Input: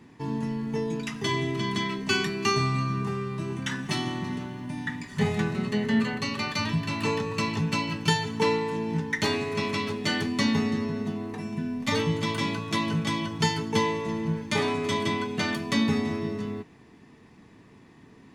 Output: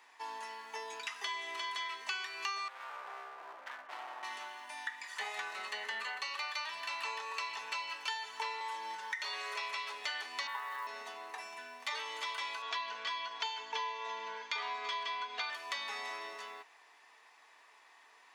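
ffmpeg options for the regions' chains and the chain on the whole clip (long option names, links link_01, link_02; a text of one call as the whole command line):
ffmpeg -i in.wav -filter_complex "[0:a]asettb=1/sr,asplit=3[link_01][link_02][link_03];[link_01]atrim=end=2.684[link_04];[link_02]atrim=start=2.68:end=4.23,asetpts=PTS-STARTPTS,afade=type=in:duration=0.004:curve=qsin,afade=type=out:start_time=1.546:duration=0.004:curve=qsin,lowpass=1100,volume=35dB,asoftclip=hard,volume=-35dB[link_05];[link_03]atrim=start=4.226[link_06];[link_04][link_05]acrossfade=duration=0.004:curve1=hsin:curve2=qsin[link_07];[link_07][link_06]acrossfade=duration=0.004:curve1=qsin:curve2=hsin,asettb=1/sr,asplit=3[link_08][link_09][link_10];[link_08]atrim=end=8.604[link_11];[link_09]atrim=start=8.6:end=9.56,asetpts=PTS-STARTPTS,afade=type=in:duration=0.004:curve=qsin,afade=type=out:start_time=0.956:duration=0.004:curve=qsin,aecho=1:1:5.4:0.93,atrim=end_sample=42336,acompressor=threshold=-24dB:ratio=4:attack=3.2:release=140:knee=1:detection=peak[link_12];[link_10]atrim=start=9.556[link_13];[link_11][link_12]acrossfade=duration=0.004:curve1=hsin:curve2=qsin[link_14];[link_14][link_13]acrossfade=duration=0.004:curve1=qsin:curve2=hsin,asettb=1/sr,asplit=3[link_15][link_16][link_17];[link_15]atrim=end=10.474[link_18];[link_16]atrim=start=10.47:end=10.87,asetpts=PTS-STARTPTS,afade=type=in:duration=0.004:curve=qsin,afade=type=out:start_time=0.396:duration=0.004:curve=qsin,highpass=frequency=270:width=0.5412,highpass=frequency=270:width=1.3066,equalizer=frequency=280:width_type=q:width=4:gain=-7,equalizer=frequency=410:width_type=q:width=4:gain=-7,equalizer=frequency=710:width_type=q:width=4:gain=-5,equalizer=frequency=1000:width_type=q:width=4:gain=10,equalizer=frequency=1600:width_type=q:width=4:gain=5,equalizer=frequency=2500:width_type=q:width=4:gain=-9,lowpass=frequency=3200:width=0.5412,lowpass=frequency=3200:width=1.3066,acrusher=bits=6:mode=log:mix=0:aa=0.000001[link_19];[link_17]atrim=start=10.866[link_20];[link_18][link_19]acrossfade=duration=0.004:curve1=hsin:curve2=qsin[link_21];[link_21][link_20]acrossfade=duration=0.004:curve1=qsin:curve2=hsin,asettb=1/sr,asplit=3[link_22][link_23][link_24];[link_22]atrim=end=12.624[link_25];[link_23]atrim=start=12.62:end=15.5,asetpts=PTS-STARTPTS,afade=type=in:duration=0.004:curve=qsin,afade=type=out:start_time=2.876:duration=0.004:curve=qsin,lowpass=frequency=5800:width=0.5412,lowpass=frequency=5800:width=1.3066,aecho=1:1:4.2:0.94,atrim=end_sample=127008[link_26];[link_24]atrim=start=15.496[link_27];[link_25][link_26]acrossfade=duration=0.004:curve1=hsin:curve2=qsin[link_28];[link_28][link_27]acrossfade=duration=0.004:curve1=qsin:curve2=hsin,acrossover=split=5600[link_29][link_30];[link_30]acompressor=threshold=-49dB:ratio=4:attack=1:release=60[link_31];[link_29][link_31]amix=inputs=2:normalize=0,highpass=frequency=730:width=0.5412,highpass=frequency=730:width=1.3066,acompressor=threshold=-37dB:ratio=4" out.wav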